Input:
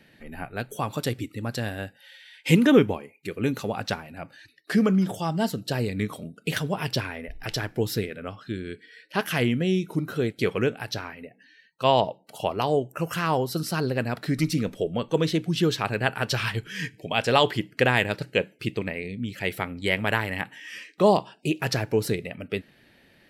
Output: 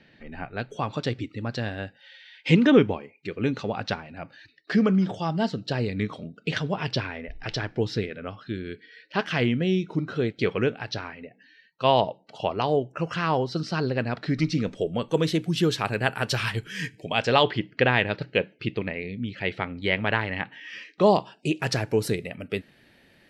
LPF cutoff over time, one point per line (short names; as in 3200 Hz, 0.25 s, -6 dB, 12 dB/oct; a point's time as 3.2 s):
LPF 24 dB/oct
14.5 s 5300 Hz
15.11 s 12000 Hz
16.92 s 12000 Hz
17.48 s 4400 Hz
20.59 s 4400 Hz
21.91 s 12000 Hz